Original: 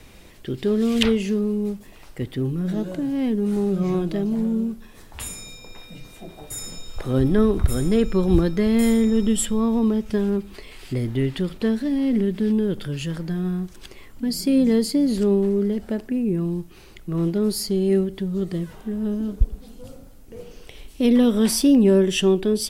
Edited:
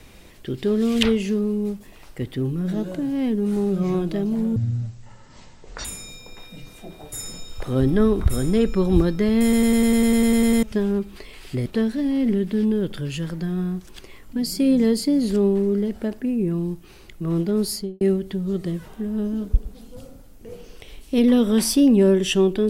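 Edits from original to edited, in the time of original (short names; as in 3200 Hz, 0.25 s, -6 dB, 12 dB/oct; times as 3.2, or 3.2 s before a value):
4.56–5.23 speed 52%
8.81 stutter in place 0.10 s, 12 plays
11.04–11.53 cut
17.58–17.88 studio fade out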